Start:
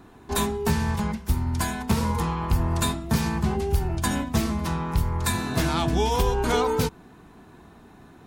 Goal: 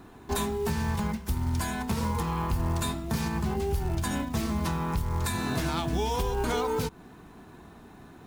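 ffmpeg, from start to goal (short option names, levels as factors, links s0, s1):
-af "alimiter=limit=0.106:level=0:latency=1:release=201,acrusher=bits=6:mode=log:mix=0:aa=0.000001"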